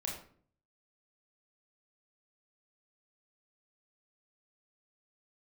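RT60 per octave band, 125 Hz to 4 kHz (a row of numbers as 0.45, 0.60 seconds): 0.80, 0.65, 0.55, 0.45, 0.40, 0.35 seconds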